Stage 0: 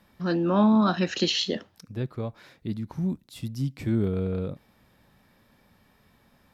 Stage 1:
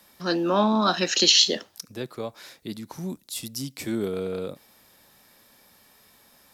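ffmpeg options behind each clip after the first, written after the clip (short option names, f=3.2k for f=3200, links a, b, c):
-filter_complex "[0:a]bass=f=250:g=-11,treble=f=4k:g=13,acrossover=split=130|2000[a][b][c];[a]acompressor=threshold=-55dB:ratio=6[d];[d][b][c]amix=inputs=3:normalize=0,volume=3.5dB"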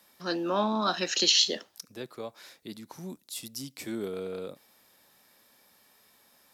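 -af "lowshelf=f=130:g=-10.5,volume=-5dB"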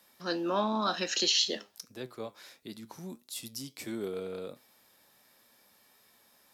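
-filter_complex "[0:a]asplit=2[a][b];[b]alimiter=limit=-18dB:level=0:latency=1:release=115,volume=0.5dB[c];[a][c]amix=inputs=2:normalize=0,flanger=delay=7.4:depth=2.5:regen=78:speed=1.5:shape=triangular,volume=-3.5dB"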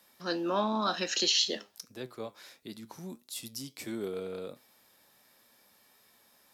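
-af anull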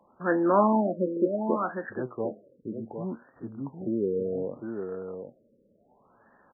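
-af "aecho=1:1:755:0.447,afftfilt=real='re*lt(b*sr/1024,570*pow(1900/570,0.5+0.5*sin(2*PI*0.67*pts/sr)))':imag='im*lt(b*sr/1024,570*pow(1900/570,0.5+0.5*sin(2*PI*0.67*pts/sr)))':win_size=1024:overlap=0.75,volume=8.5dB"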